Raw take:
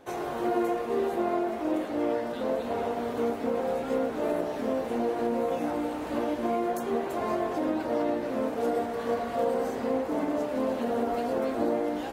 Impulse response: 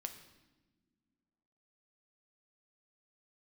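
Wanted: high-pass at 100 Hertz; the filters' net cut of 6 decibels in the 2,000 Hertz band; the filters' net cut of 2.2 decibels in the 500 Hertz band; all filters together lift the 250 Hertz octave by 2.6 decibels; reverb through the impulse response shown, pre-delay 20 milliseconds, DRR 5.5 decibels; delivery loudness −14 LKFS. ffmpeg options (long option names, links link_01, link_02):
-filter_complex "[0:a]highpass=100,equalizer=frequency=250:width_type=o:gain=4.5,equalizer=frequency=500:width_type=o:gain=-3.5,equalizer=frequency=2000:width_type=o:gain=-8,asplit=2[link_01][link_02];[1:a]atrim=start_sample=2205,adelay=20[link_03];[link_02][link_03]afir=irnorm=-1:irlink=0,volume=-3dB[link_04];[link_01][link_04]amix=inputs=2:normalize=0,volume=14dB"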